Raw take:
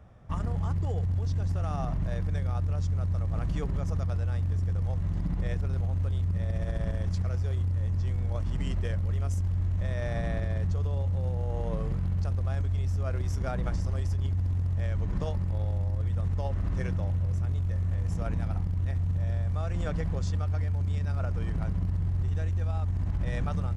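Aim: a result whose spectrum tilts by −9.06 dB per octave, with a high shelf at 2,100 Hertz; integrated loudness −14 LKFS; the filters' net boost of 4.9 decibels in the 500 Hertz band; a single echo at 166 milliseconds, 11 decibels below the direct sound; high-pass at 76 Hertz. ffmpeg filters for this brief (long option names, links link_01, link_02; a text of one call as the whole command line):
ffmpeg -i in.wav -af "highpass=76,equalizer=frequency=500:width_type=o:gain=6.5,highshelf=frequency=2100:gain=-8.5,aecho=1:1:166:0.282,volume=16dB" out.wav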